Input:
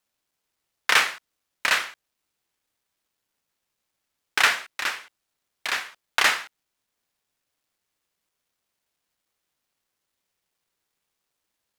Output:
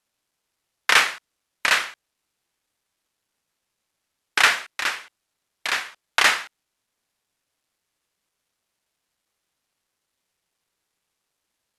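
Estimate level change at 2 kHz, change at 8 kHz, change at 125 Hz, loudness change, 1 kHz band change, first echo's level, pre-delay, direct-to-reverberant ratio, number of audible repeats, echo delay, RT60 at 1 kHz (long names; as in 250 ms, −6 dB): +2.5 dB, +2.5 dB, can't be measured, +2.5 dB, +2.5 dB, no echo audible, no reverb audible, no reverb audible, no echo audible, no echo audible, no reverb audible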